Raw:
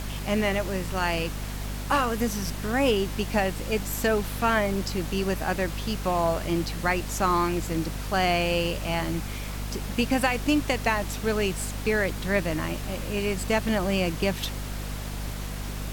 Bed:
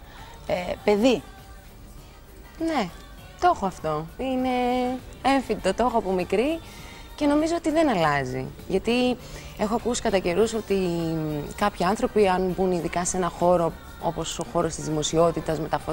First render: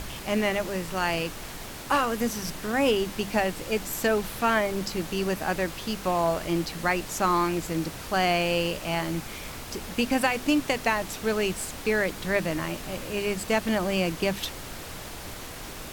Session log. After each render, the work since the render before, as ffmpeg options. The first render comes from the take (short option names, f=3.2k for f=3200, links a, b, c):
-af "bandreject=f=50:t=h:w=6,bandreject=f=100:t=h:w=6,bandreject=f=150:t=h:w=6,bandreject=f=200:t=h:w=6,bandreject=f=250:t=h:w=6"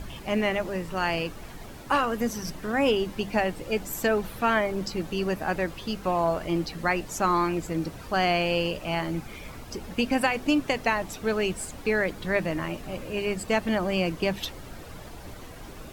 -af "afftdn=nr=10:nf=-39"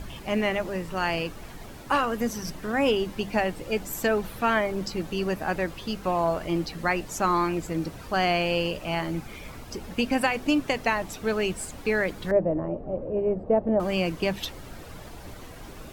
-filter_complex "[0:a]asettb=1/sr,asplit=3[a][b][c];[a]atrim=end=12.314[d];[b]atrim=start=12.31:end=13.8,asetpts=PTS-STARTPTS,afade=t=in:d=0.004:c=qsin,afade=t=out:st=1.486:d=0.004:c=qsin,lowpass=f=580:t=q:w=2.2[e];[c]atrim=start=13.796[f];[d][e]acrossfade=d=0.004:c1=hsin:c2=qsin[g];[g][f]acrossfade=d=0.004:c1=qsin:c2=hsin"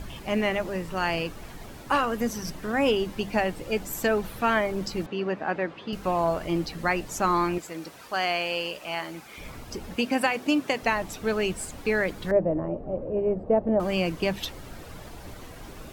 -filter_complex "[0:a]asettb=1/sr,asplit=3[a][b][c];[a]atrim=end=5.064[d];[b]atrim=start=5.06:end=5.93,asetpts=PTS-STARTPTS,afade=t=in:d=0.004:c=qsin,afade=t=out:st=0.866:d=0.004:c=qsin,highpass=190,lowpass=2.8k[e];[c]atrim=start=5.926[f];[d][e]acrossfade=d=0.004:c1=hsin:c2=qsin[g];[g][f]acrossfade=d=0.004:c1=qsin:c2=hsin,asettb=1/sr,asplit=3[h][i][j];[h]atrim=end=7.584[k];[i]atrim=start=7.58:end=9.38,asetpts=PTS-STARTPTS,afade=t=in:d=0.004:c=qsin,afade=t=out:st=1.796:d=0.004:c=qsin,highpass=f=740:p=1[l];[j]atrim=start=9.376[m];[k][l]acrossfade=d=0.004:c1=hsin:c2=qsin[n];[n][m]acrossfade=d=0.004:c1=qsin:c2=hsin,asettb=1/sr,asplit=3[o][p][q];[o]atrim=end=9.974[r];[p]atrim=start=9.97:end=10.83,asetpts=PTS-STARTPTS,afade=t=in:d=0.004:c=qsin,afade=t=out:st=0.856:d=0.004:c=qsin,highpass=180[s];[q]atrim=start=10.826[t];[r][s]acrossfade=d=0.004:c1=hsin:c2=qsin[u];[u][t]acrossfade=d=0.004:c1=qsin:c2=hsin"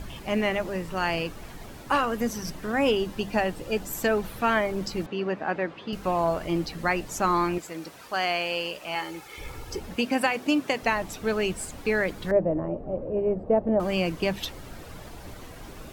-filter_complex "[0:a]asettb=1/sr,asplit=3[a][b][c];[a]atrim=end=2.994[d];[b]atrim=start=2.99:end=3.94,asetpts=PTS-STARTPTS,afade=t=in:d=0.004:c=qsin,afade=t=out:st=0.946:d=0.004:c=qsin,bandreject=f=2.2k:w=12[e];[c]atrim=start=3.936[f];[d][e]acrossfade=d=0.004:c1=hsin:c2=qsin[g];[g][f]acrossfade=d=0.004:c1=qsin:c2=hsin,asettb=1/sr,asplit=3[h][i][j];[h]atrim=end=8.954[k];[i]atrim=start=8.95:end=9.8,asetpts=PTS-STARTPTS,afade=t=in:d=0.004:c=qsin,afade=t=out:st=0.846:d=0.004:c=qsin,aecho=1:1:2.3:0.65,atrim=end_sample=37485[l];[j]atrim=start=9.796[m];[k][l]acrossfade=d=0.004:c1=hsin:c2=qsin[n];[n][m]acrossfade=d=0.004:c1=qsin:c2=hsin"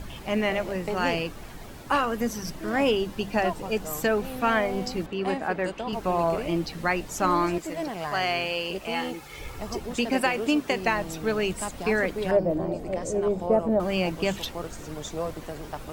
-filter_complex "[1:a]volume=-11.5dB[a];[0:a][a]amix=inputs=2:normalize=0"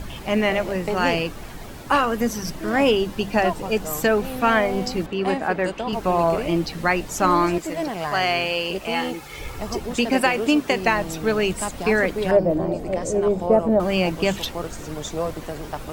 -af "volume=5dB"